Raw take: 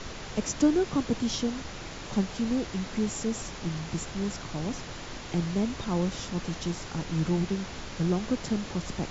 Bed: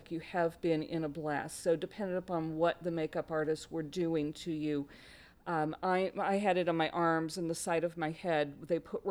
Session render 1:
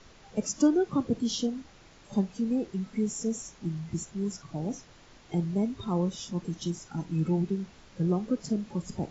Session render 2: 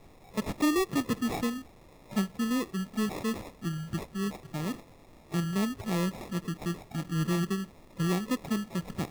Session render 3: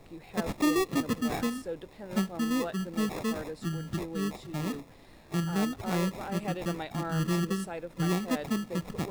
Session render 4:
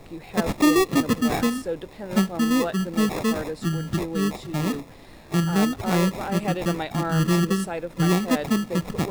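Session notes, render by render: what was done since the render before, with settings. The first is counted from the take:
noise reduction from a noise print 15 dB
decimation without filtering 29×; soft clipping −19.5 dBFS, distortion −18 dB
mix in bed −6.5 dB
level +8 dB

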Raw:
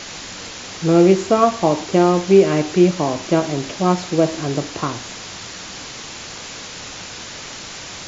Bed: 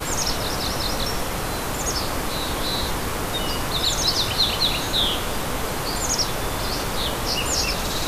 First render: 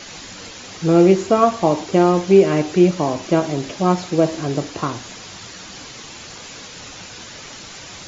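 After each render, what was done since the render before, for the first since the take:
broadband denoise 6 dB, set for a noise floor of −34 dBFS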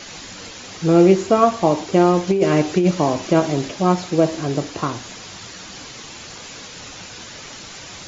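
0:02.27–0:03.68: compressor whose output falls as the input rises −14 dBFS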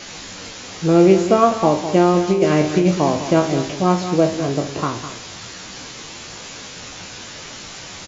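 peak hold with a decay on every bin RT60 0.31 s
single-tap delay 204 ms −11 dB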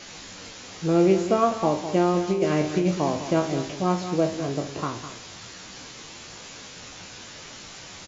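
level −7 dB

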